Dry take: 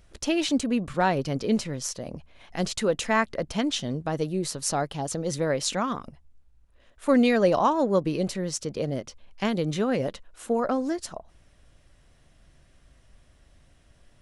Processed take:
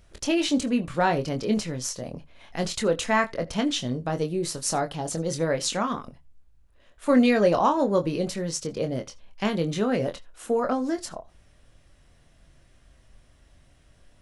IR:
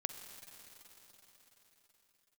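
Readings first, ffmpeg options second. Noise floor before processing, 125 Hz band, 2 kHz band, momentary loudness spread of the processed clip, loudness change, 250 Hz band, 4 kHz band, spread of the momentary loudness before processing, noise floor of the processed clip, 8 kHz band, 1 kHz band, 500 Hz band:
-60 dBFS, 0.0 dB, +1.0 dB, 12 LU, +0.5 dB, +0.5 dB, +1.0 dB, 12 LU, -58 dBFS, +1.0 dB, +1.0 dB, +0.5 dB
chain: -filter_complex "[0:a]asplit=2[s0][s1];[1:a]atrim=start_sample=2205,atrim=end_sample=3087,adelay=24[s2];[s1][s2]afir=irnorm=-1:irlink=0,volume=0.501[s3];[s0][s3]amix=inputs=2:normalize=0"

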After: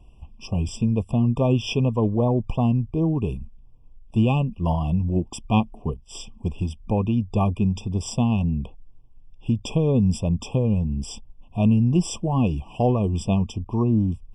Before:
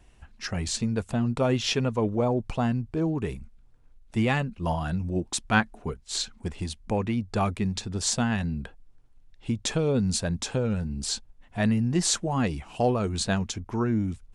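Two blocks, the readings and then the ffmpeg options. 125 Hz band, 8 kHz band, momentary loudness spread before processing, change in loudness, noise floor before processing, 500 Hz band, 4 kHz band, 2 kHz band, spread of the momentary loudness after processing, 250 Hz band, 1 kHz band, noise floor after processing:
+7.0 dB, -8.0 dB, 9 LU, +4.0 dB, -55 dBFS, +2.0 dB, -5.0 dB, -8.0 dB, 11 LU, +5.0 dB, +1.0 dB, -48 dBFS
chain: -af "aeval=exprs='0.376*(cos(1*acos(clip(val(0)/0.376,-1,1)))-cos(1*PI/2))+0.00237*(cos(8*acos(clip(val(0)/0.376,-1,1)))-cos(8*PI/2))':c=same,bass=f=250:g=6,treble=f=4000:g=-7,afftfilt=real='re*eq(mod(floor(b*sr/1024/1200),2),0)':imag='im*eq(mod(floor(b*sr/1024/1200),2),0)':win_size=1024:overlap=0.75,volume=1.19"

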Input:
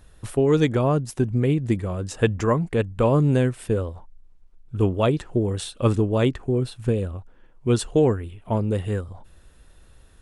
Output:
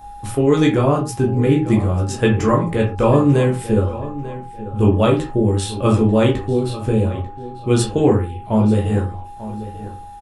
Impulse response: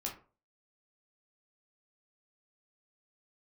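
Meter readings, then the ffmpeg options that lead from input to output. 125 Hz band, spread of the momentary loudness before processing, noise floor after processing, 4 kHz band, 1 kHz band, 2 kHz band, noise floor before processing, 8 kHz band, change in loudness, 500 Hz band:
+5.0 dB, 10 LU, -35 dBFS, +5.5 dB, +7.5 dB, +5.5 dB, -52 dBFS, +6.0 dB, +5.5 dB, +5.0 dB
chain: -filter_complex "[0:a]aeval=exprs='val(0)+0.00708*sin(2*PI*820*n/s)':c=same,crystalizer=i=0.5:c=0,asplit=2[s0][s1];[s1]adelay=893,lowpass=f=3600:p=1,volume=0.188,asplit=2[s2][s3];[s3]adelay=893,lowpass=f=3600:p=1,volume=0.29,asplit=2[s4][s5];[s5]adelay=893,lowpass=f=3600:p=1,volume=0.29[s6];[s0][s2][s4][s6]amix=inputs=4:normalize=0[s7];[1:a]atrim=start_sample=2205,afade=t=out:st=0.19:d=0.01,atrim=end_sample=8820[s8];[s7][s8]afir=irnorm=-1:irlink=0,volume=1.78"

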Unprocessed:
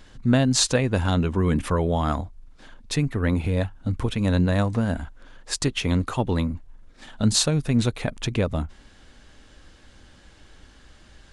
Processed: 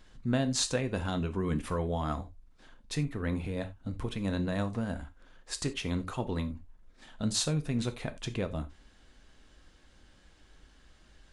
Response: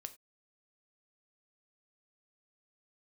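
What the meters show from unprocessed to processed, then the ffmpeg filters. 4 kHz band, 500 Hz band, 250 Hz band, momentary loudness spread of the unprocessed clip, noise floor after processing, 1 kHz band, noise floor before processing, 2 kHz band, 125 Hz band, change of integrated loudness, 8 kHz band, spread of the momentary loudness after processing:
-9.0 dB, -8.5 dB, -9.5 dB, 10 LU, -61 dBFS, -9.0 dB, -52 dBFS, -9.0 dB, -10.5 dB, -9.5 dB, -9.0 dB, 10 LU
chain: -filter_complex "[1:a]atrim=start_sample=2205,atrim=end_sample=4410[s0];[0:a][s0]afir=irnorm=-1:irlink=0,volume=0.596"

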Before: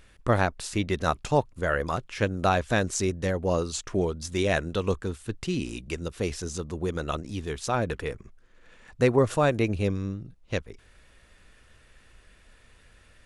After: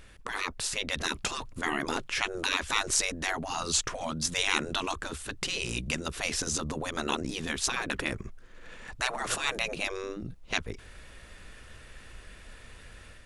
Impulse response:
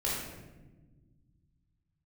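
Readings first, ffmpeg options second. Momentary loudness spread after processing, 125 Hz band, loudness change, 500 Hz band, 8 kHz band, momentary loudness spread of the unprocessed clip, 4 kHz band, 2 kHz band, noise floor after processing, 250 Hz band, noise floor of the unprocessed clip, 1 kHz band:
23 LU, -12.5 dB, -3.0 dB, -11.0 dB, +6.0 dB, 10 LU, +7.0 dB, +1.5 dB, -51 dBFS, -8.0 dB, -57 dBFS, -4.5 dB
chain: -af "afftfilt=real='re*lt(hypot(re,im),0.0891)':imag='im*lt(hypot(re,im),0.0891)':win_size=1024:overlap=0.75,dynaudnorm=f=570:g=3:m=1.68,volume=1.41"

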